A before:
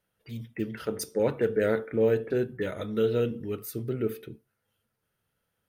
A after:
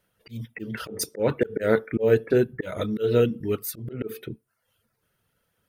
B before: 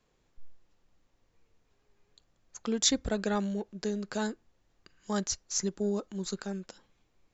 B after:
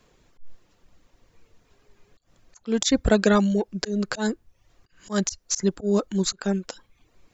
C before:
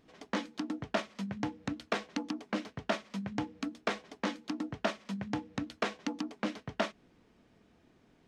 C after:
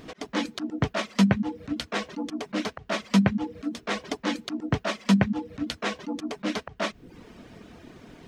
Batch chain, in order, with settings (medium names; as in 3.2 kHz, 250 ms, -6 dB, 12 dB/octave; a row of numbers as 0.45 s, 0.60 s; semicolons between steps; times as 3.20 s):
slow attack 161 ms; band-stop 820 Hz, Q 20; reverb removal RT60 0.54 s; peak normalisation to -6 dBFS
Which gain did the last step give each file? +7.5 dB, +13.0 dB, +19.0 dB